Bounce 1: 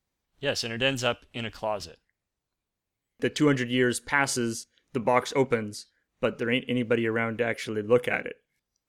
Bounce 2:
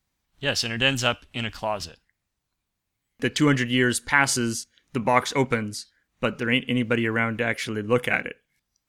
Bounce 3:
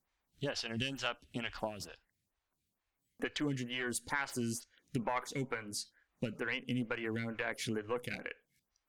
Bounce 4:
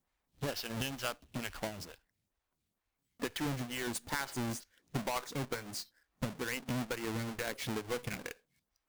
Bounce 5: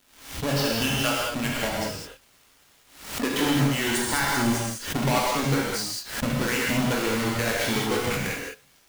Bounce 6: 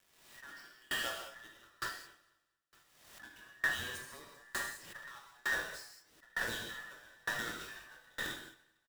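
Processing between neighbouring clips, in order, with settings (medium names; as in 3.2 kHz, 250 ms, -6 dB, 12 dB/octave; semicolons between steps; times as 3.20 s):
peaking EQ 460 Hz -7 dB 1.1 oct; trim +5.5 dB
valve stage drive 10 dB, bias 0.4; compression 6:1, threshold -31 dBFS, peak gain reduction 14 dB; lamp-driven phase shifter 2.2 Hz
square wave that keeps the level; trim -4 dB
crackle 330 per s -55 dBFS; gated-style reverb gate 240 ms flat, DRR -5 dB; swell ahead of each attack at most 93 dB/s; trim +7.5 dB
every band turned upside down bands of 2 kHz; feedback delay 228 ms, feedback 58%, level -17 dB; sawtooth tremolo in dB decaying 1.1 Hz, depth 32 dB; trim -8.5 dB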